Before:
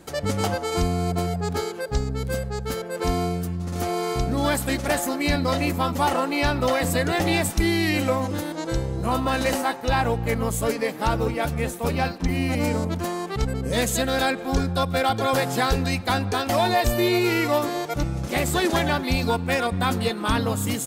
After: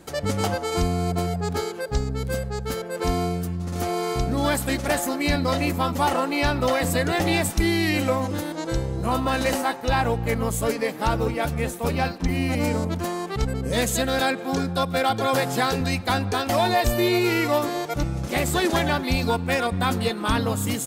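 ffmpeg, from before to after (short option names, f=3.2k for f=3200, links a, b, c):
-filter_complex "[0:a]asettb=1/sr,asplit=3[a][b][c];[a]atrim=end=14.204[d];[b]atrim=start=14.2:end=15.81,asetpts=PTS-STARTPTS,afade=t=in:d=0.004:c=qsin,afade=t=out:st=1.606:d=0.004:c=qsin,highpass=f=100:w=0.5412,highpass=f=100:w=1.3066[e];[c]atrim=start=15.806[f];[d][e]acrossfade=d=0.004:c1=hsin:c2=qsin[g];[g][f]acrossfade=d=0.004:c1=qsin:c2=hsin"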